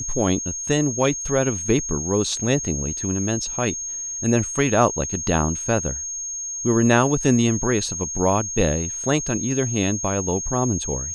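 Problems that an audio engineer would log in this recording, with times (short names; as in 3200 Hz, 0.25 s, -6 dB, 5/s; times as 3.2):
tone 6500 Hz -27 dBFS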